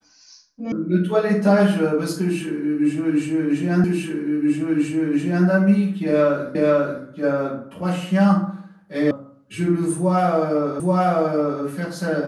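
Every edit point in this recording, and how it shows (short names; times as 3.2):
0.72 sound cut off
3.84 repeat of the last 1.63 s
6.55 repeat of the last 0.49 s
9.11 sound cut off
10.8 repeat of the last 0.83 s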